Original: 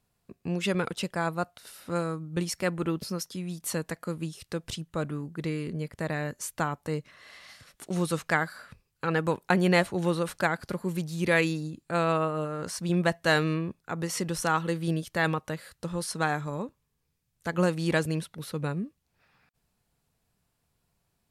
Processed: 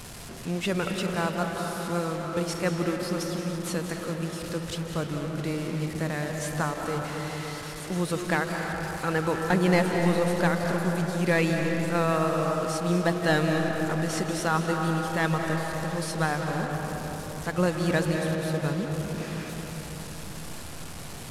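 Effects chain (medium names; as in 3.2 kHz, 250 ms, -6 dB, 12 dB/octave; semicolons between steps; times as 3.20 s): one-bit delta coder 64 kbps, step -35.5 dBFS; reverberation RT60 4.6 s, pre-delay 135 ms, DRR 2 dB; crackle 13 per s -43 dBFS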